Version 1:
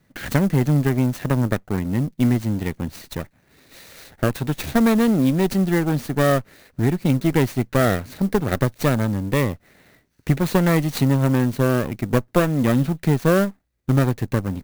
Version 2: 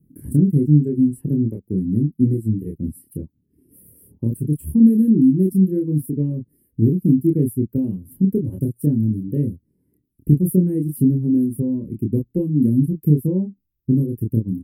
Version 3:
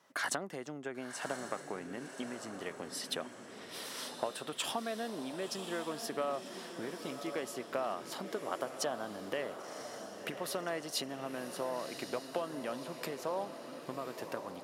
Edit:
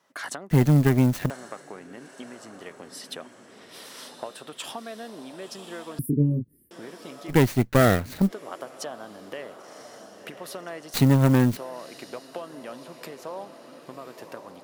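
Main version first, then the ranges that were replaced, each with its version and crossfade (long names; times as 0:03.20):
3
0:00.51–0:01.30: punch in from 1
0:05.99–0:06.71: punch in from 2
0:07.31–0:08.29: punch in from 1, crossfade 0.06 s
0:10.94–0:11.57: punch in from 1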